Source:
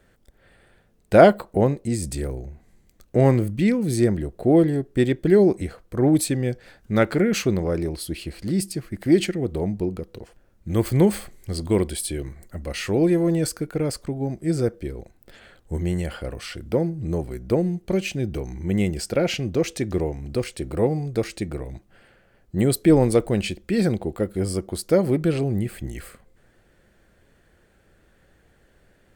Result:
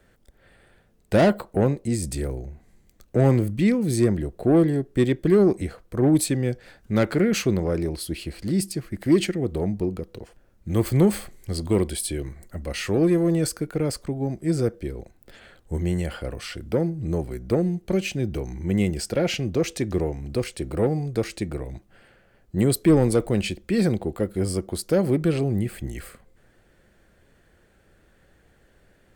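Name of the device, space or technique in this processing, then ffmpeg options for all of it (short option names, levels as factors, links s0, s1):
one-band saturation: -filter_complex "[0:a]acrossover=split=320|4900[s0][s1][s2];[s1]asoftclip=type=tanh:threshold=0.141[s3];[s0][s3][s2]amix=inputs=3:normalize=0"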